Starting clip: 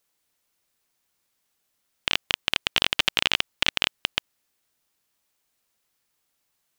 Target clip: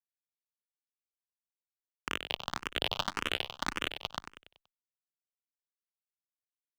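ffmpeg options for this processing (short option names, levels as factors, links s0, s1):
-filter_complex "[0:a]highshelf=f=1600:t=q:w=1.5:g=-6.5,acrusher=bits=7:mix=0:aa=0.000001,aecho=1:1:95|190|285|380|475:0.355|0.156|0.0687|0.0302|0.0133,asplit=2[s0][s1];[s1]afreqshift=1.8[s2];[s0][s2]amix=inputs=2:normalize=1,volume=0.794"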